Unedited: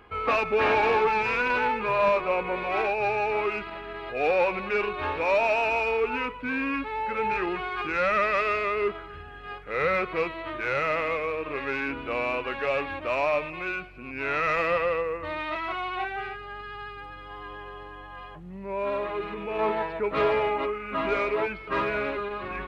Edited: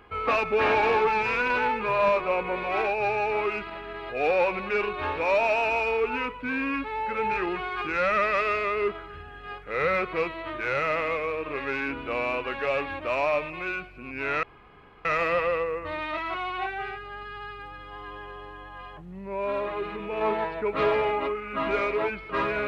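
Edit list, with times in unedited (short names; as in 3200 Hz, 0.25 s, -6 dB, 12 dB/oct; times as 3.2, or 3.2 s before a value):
14.43 insert room tone 0.62 s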